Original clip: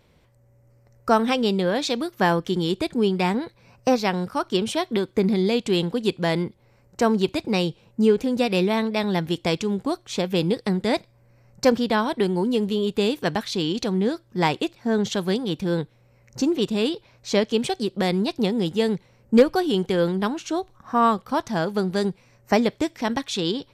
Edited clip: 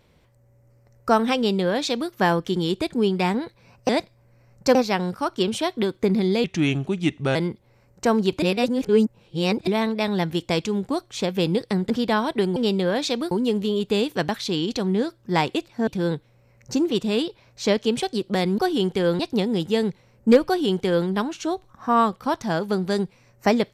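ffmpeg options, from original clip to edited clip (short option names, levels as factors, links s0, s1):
-filter_complex "[0:a]asplit=13[s0][s1][s2][s3][s4][s5][s6][s7][s8][s9][s10][s11][s12];[s0]atrim=end=3.892[s13];[s1]atrim=start=10.858:end=11.722[s14];[s2]atrim=start=3.888:end=5.584[s15];[s3]atrim=start=5.58:end=6.31,asetpts=PTS-STARTPTS,asetrate=35280,aresample=44100,atrim=end_sample=40241,asetpts=PTS-STARTPTS[s16];[s4]atrim=start=6.306:end=7.382[s17];[s5]atrim=start=7.378:end=8.632,asetpts=PTS-STARTPTS,areverse[s18];[s6]atrim=start=8.628:end=10.862[s19];[s7]atrim=start=11.718:end=12.382[s20];[s8]atrim=start=1.358:end=2.112[s21];[s9]atrim=start=12.378:end=14.942[s22];[s10]atrim=start=15.538:end=18.252[s23];[s11]atrim=start=19.518:end=20.132[s24];[s12]atrim=start=18.248[s25];[s13][s14]acrossfade=d=0.004:c1=hsin:c2=hsin[s26];[s26][s15]acrossfade=d=0.004:c1=hsin:c2=hsin[s27];[s27][s16]acrossfade=d=0.004:c1=hsin:c2=hsin[s28];[s28][s17]acrossfade=d=0.004:c1=hsin:c2=hsin[s29];[s29][s18]acrossfade=d=0.004:c1=hsin:c2=hsin[s30];[s30][s19]acrossfade=d=0.004:c1=hsin:c2=hsin[s31];[s31][s20]acrossfade=d=0.004:c1=hsin:c2=hsin[s32];[s32][s21]acrossfade=d=0.004:c1=hsin:c2=hsin[s33];[s33][s22]acrossfade=d=0.004:c1=hsin:c2=hsin[s34];[s34][s23]acrossfade=d=0.004:c1=hsin:c2=hsin[s35];[s35][s24]acrossfade=d=0.004:c1=hsin:c2=hsin[s36];[s36][s25]acrossfade=d=0.004:c1=hsin:c2=hsin"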